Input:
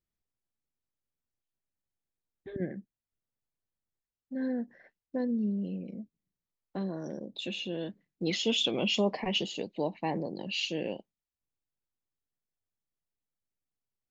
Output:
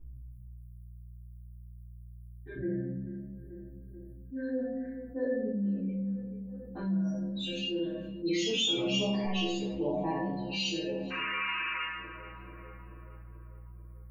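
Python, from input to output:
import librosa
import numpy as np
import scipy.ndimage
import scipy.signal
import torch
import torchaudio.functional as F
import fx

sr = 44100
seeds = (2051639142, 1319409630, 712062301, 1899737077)

y = fx.bin_expand(x, sr, power=1.5)
y = fx.comb(y, sr, ms=1.3, depth=0.59, at=(6.8, 7.5))
y = fx.dmg_buzz(y, sr, base_hz=60.0, harmonics=4, level_db=-65.0, tilt_db=-9, odd_only=False)
y = fx.tilt_shelf(y, sr, db=8.0, hz=970.0, at=(9.68, 10.08), fade=0.02)
y = fx.spec_paint(y, sr, seeds[0], shape='noise', start_s=11.1, length_s=0.71, low_hz=940.0, high_hz=3000.0, level_db=-39.0)
y = fx.stiff_resonator(y, sr, f0_hz=63.0, decay_s=0.81, stiffness=0.008)
y = fx.small_body(y, sr, hz=(540.0, 1500.0, 2200.0, 3400.0), ring_ms=20, db=14, at=(5.22, 5.95))
y = fx.echo_tape(y, sr, ms=437, feedback_pct=64, wet_db=-20.5, lp_hz=1300.0, drive_db=30.0, wow_cents=10)
y = fx.room_shoebox(y, sr, seeds[1], volume_m3=100.0, walls='mixed', distance_m=3.5)
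y = fx.env_flatten(y, sr, amount_pct=50)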